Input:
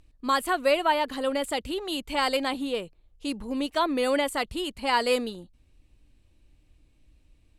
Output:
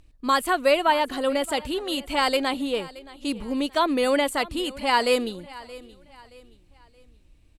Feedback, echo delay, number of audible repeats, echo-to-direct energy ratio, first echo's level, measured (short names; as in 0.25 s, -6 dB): 37%, 0.624 s, 2, -19.0 dB, -19.5 dB